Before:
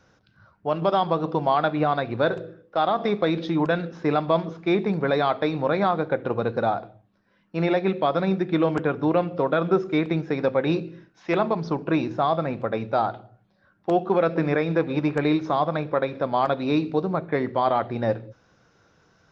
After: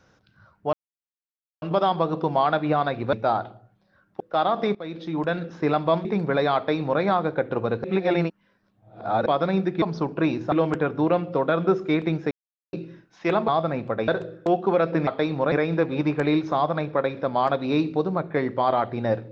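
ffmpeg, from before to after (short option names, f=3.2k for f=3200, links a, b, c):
-filter_complex "[0:a]asplit=17[a][b][c][d][e][f][g][h][i][j][k][l][m][n][o][p][q];[a]atrim=end=0.73,asetpts=PTS-STARTPTS,afade=t=out:st=0.726:d=0.004:c=hsin,apad=pad_dur=0.89[r];[b]atrim=start=0.73:end=2.242,asetpts=PTS-STARTPTS,afade=t=in:d=0.004:c=hsin[s];[c]atrim=start=12.818:end=13.892[t];[d]atrim=start=2.618:end=3.17,asetpts=PTS-STARTPTS,afade=t=out:st=0.548:d=0.004:c=hsin:silence=0.133352[u];[e]atrim=start=3.17:end=4.472,asetpts=PTS-STARTPTS,afade=t=in:d=0.75:silence=0.133352[v];[f]atrim=start=4.788:end=6.582[w];[g]atrim=start=6.578:end=8.002,asetpts=PTS-STARTPTS,areverse[x];[h]atrim=start=7.998:end=8.562[y];[i]atrim=start=11.518:end=12.222[z];[j]atrim=start=8.558:end=10.35,asetpts=PTS-STARTPTS,afade=t=out:st=1.788:d=0.004:c=hsin[aa];[k]atrim=start=10.35:end=10.77,asetpts=PTS-STARTPTS,volume=0[ab];[l]atrim=start=10.77:end=11.522,asetpts=PTS-STARTPTS,afade=t=in:d=0.004:c=hsin[ac];[m]atrim=start=12.218:end=12.822[ad];[n]atrim=start=2.238:end=2.622[ae];[o]atrim=start=13.888:end=14.502[af];[p]atrim=start=5.298:end=5.752[ag];[q]atrim=start=14.498[ah];[r][s]concat=n=2:v=0:a=1[ai];[ai][t]acrossfade=d=0.004:c1=hsin:c2=hsin[aj];[u][v]concat=n=2:v=0:a=1[ak];[aj][ak]acrossfade=d=0.004:c1=hsin:c2=hsin[al];[al][w]acrossfade=d=0.004:c1=hsin:c2=hsin[am];[am][x]acrossfade=d=0.004:c1=hsin:c2=hsin[an];[an][y]acrossfade=d=0.004:c1=hsin:c2=hsin[ao];[ao][z]acrossfade=d=0.004:c1=hsin:c2=hsin[ap];[aa][ab][ac]concat=n=3:v=0:a=1[aq];[ap][aq]acrossfade=d=0.004:c1=hsin:c2=hsin[ar];[ar][ad]acrossfade=d=0.004:c1=hsin:c2=hsin[as];[as][ae]acrossfade=d=0.004:c1=hsin:c2=hsin[at];[at][af]acrossfade=d=0.004:c1=hsin:c2=hsin[au];[au][ag]acrossfade=d=0.004:c1=hsin:c2=hsin[av];[av][ah]acrossfade=d=0.004:c1=hsin:c2=hsin"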